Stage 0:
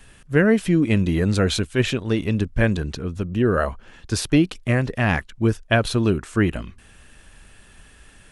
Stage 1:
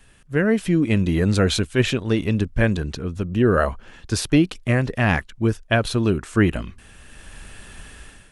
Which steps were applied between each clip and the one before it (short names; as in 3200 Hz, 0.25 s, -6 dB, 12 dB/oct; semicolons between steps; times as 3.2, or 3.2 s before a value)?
AGC gain up to 12.5 dB; gain -4.5 dB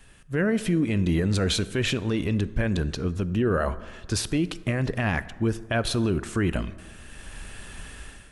limiter -15.5 dBFS, peak gain reduction 10 dB; plate-style reverb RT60 1.6 s, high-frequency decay 0.45×, DRR 15 dB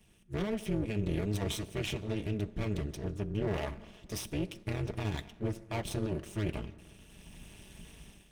minimum comb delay 0.35 ms; AM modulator 210 Hz, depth 90%; notch comb 260 Hz; gain -4.5 dB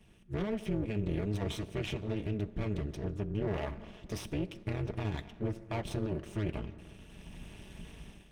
high shelf 4700 Hz -11.5 dB; in parallel at +2.5 dB: compressor, threshold -40 dBFS, peak gain reduction 12.5 dB; on the sum: gain -3.5 dB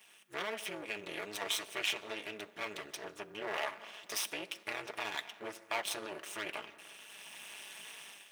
HPF 1000 Hz 12 dB/oct; high shelf 10000 Hz +9.5 dB; gain +8 dB